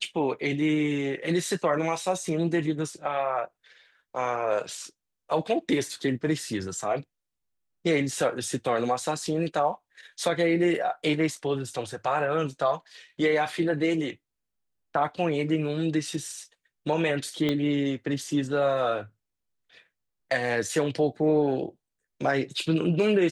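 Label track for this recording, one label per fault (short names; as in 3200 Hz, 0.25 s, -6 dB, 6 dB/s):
17.490000	17.490000	pop -14 dBFS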